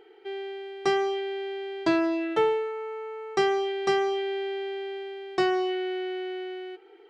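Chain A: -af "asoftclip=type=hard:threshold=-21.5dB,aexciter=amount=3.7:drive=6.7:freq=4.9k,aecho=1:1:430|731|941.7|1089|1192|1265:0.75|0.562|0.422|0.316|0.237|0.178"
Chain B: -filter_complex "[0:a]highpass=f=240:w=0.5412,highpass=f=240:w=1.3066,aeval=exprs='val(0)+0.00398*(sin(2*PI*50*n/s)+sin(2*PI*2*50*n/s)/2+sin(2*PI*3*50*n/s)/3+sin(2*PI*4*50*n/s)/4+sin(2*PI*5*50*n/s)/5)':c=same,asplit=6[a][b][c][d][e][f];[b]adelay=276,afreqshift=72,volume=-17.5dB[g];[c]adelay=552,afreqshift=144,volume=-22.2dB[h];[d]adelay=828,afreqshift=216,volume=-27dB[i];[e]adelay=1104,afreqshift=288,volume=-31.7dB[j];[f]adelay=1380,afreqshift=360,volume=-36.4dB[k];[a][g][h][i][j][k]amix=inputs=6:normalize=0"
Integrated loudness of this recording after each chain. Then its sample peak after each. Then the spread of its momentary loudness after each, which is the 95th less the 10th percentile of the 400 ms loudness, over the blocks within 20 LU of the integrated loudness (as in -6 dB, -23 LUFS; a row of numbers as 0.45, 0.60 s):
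-26.5, -28.5 LUFS; -13.0, -14.0 dBFS; 8, 11 LU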